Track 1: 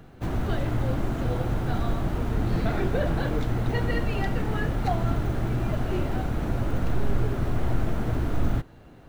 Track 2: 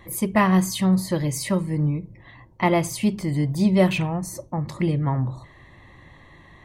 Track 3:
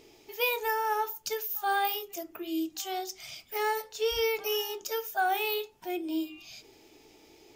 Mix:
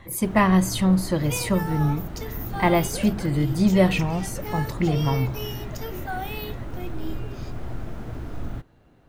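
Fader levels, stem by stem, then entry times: -7.5 dB, 0.0 dB, -4.5 dB; 0.00 s, 0.00 s, 0.90 s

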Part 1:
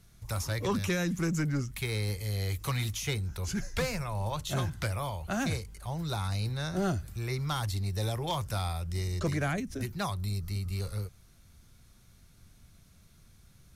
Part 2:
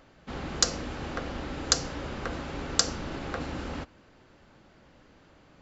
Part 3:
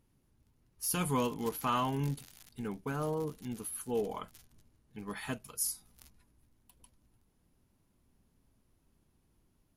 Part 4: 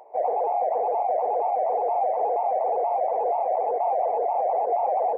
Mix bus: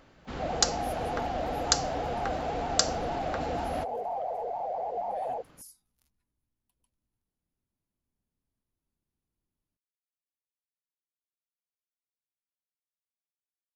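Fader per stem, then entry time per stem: mute, -1.0 dB, -16.0 dB, -9.5 dB; mute, 0.00 s, 0.00 s, 0.25 s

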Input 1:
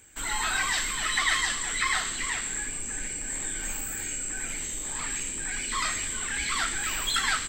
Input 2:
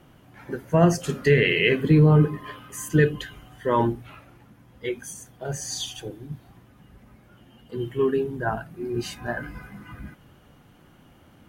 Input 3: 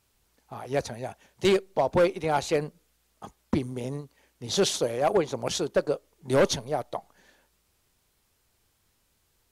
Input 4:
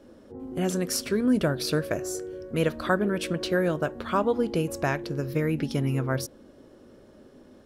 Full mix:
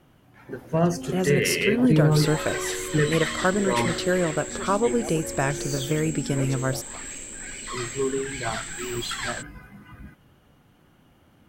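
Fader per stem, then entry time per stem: -5.0 dB, -4.0 dB, -14.5 dB, +1.5 dB; 1.95 s, 0.00 s, 0.00 s, 0.55 s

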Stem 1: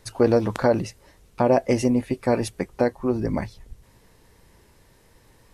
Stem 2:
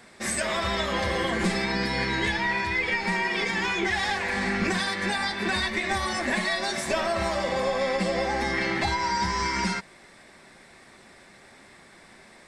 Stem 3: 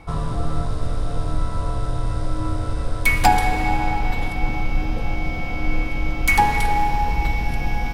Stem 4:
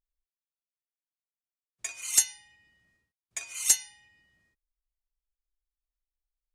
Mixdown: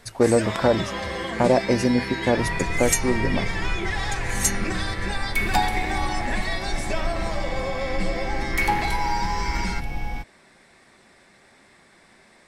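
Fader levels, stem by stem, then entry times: 0.0 dB, -3.0 dB, -6.5 dB, -1.0 dB; 0.00 s, 0.00 s, 2.30 s, 0.75 s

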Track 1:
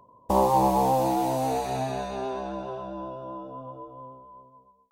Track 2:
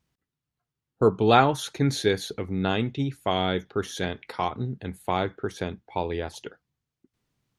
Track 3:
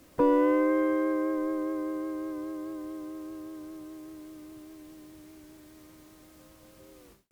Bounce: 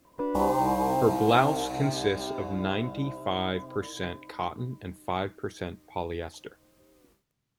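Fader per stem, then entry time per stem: -4.5 dB, -4.0 dB, -8.0 dB; 0.05 s, 0.00 s, 0.00 s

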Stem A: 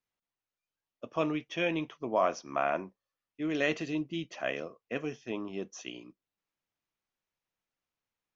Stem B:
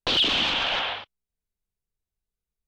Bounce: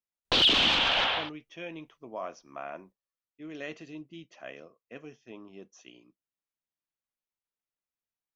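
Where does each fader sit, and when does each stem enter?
-10.0 dB, 0.0 dB; 0.00 s, 0.25 s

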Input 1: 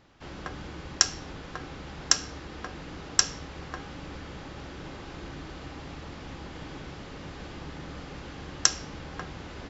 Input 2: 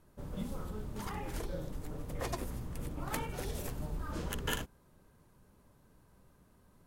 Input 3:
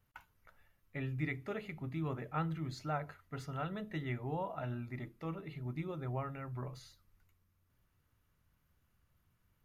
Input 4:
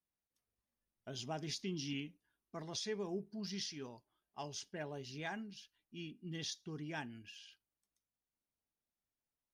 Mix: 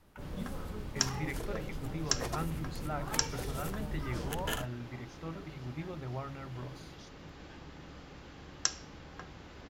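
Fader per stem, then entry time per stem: -9.0 dB, -0.5 dB, -1.0 dB, -15.0 dB; 0.00 s, 0.00 s, 0.00 s, 0.55 s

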